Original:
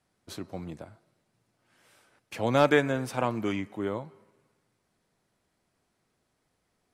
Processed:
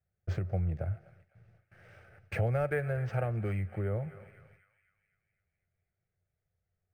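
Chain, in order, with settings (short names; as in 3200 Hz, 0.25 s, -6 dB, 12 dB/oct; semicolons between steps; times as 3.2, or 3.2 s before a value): tone controls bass +11 dB, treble -8 dB; gate with hold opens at -57 dBFS; bell 89 Hz +9.5 dB 0.38 oct; on a send: narrowing echo 0.253 s, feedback 55%, band-pass 2300 Hz, level -18.5 dB; on the sum: compressor 4:1, threshold -34 dBFS, peak gain reduction 17.5 dB; fixed phaser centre 1000 Hz, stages 6; decimation joined by straight lines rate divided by 4×; gain +7.5 dB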